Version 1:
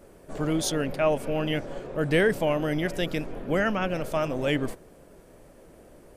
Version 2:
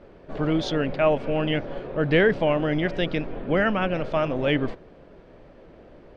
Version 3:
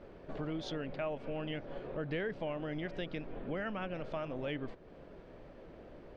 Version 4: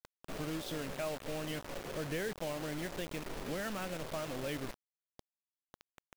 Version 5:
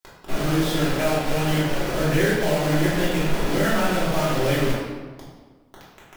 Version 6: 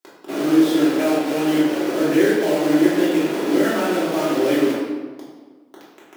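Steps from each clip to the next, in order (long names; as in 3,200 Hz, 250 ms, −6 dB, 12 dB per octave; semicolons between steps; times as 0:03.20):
low-pass filter 4,100 Hz 24 dB per octave; level +3 dB
downward compressor 2.5 to 1, threshold −37 dBFS, peak gain reduction 14.5 dB; level −4 dB
bit reduction 7 bits; level −1 dB
convolution reverb RT60 1.3 s, pre-delay 3 ms, DRR −9 dB; level +7.5 dB
high-pass with resonance 310 Hz, resonance Q 3.6; level −1 dB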